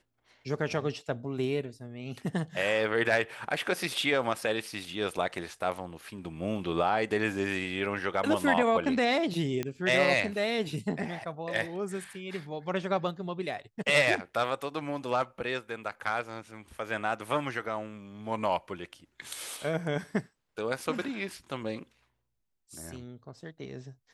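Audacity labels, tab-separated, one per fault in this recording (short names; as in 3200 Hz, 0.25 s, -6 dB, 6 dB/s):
9.630000	9.630000	pop -18 dBFS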